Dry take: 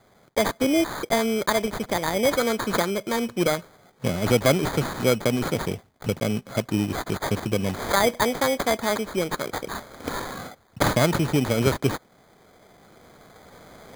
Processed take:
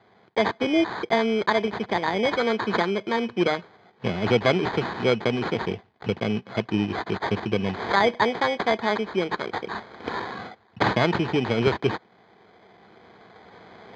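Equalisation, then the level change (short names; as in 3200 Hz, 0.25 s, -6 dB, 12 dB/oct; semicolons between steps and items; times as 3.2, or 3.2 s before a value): speaker cabinet 140–3800 Hz, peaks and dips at 150 Hz -9 dB, 270 Hz -9 dB, 570 Hz -10 dB, 1300 Hz -7 dB, 2200 Hz -3 dB, 3600 Hz -4 dB; +4.5 dB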